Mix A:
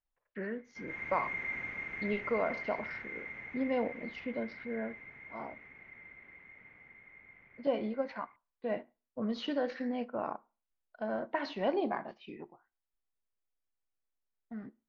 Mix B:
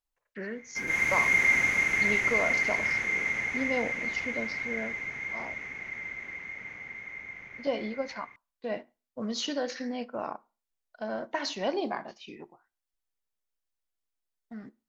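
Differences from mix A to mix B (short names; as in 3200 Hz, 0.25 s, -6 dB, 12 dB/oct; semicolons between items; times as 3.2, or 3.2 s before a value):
background +11.0 dB; master: remove air absorption 370 m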